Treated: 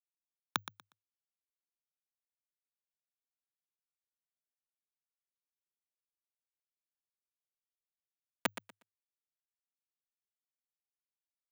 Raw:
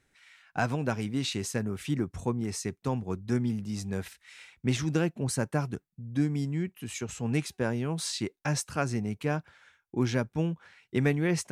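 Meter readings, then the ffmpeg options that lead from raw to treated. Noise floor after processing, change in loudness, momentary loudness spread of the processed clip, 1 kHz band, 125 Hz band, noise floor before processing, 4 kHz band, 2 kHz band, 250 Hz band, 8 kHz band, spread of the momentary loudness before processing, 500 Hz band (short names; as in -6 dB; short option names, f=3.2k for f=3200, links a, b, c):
under -85 dBFS, -8.0 dB, 13 LU, -12.0 dB, -36.5 dB, -77 dBFS, -11.0 dB, -12.5 dB, -29.0 dB, -17.0 dB, 8 LU, -23.5 dB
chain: -filter_complex "[0:a]highpass=f=65:p=1,aemphasis=mode=reproduction:type=bsi,alimiter=level_in=3dB:limit=-24dB:level=0:latency=1,volume=-3dB,acompressor=threshold=-43dB:ratio=8,lowpass=f=1.2k:t=q:w=7.3,acrusher=bits=4:mix=0:aa=0.000001,afreqshift=100,asplit=2[a][b];[b]aecho=0:1:120|240|360:0.224|0.0493|0.0108[c];[a][c]amix=inputs=2:normalize=0,volume=11dB"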